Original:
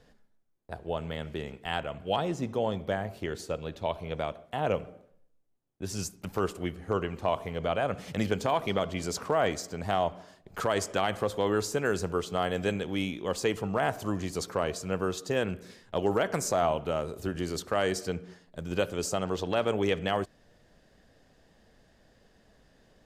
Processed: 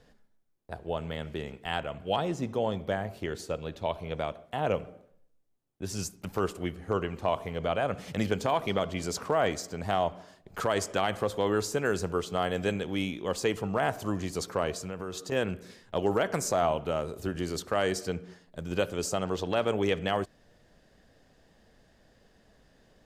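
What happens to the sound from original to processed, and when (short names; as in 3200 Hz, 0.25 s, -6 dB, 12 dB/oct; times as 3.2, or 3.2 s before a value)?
14.72–15.32 compressor, threshold -32 dBFS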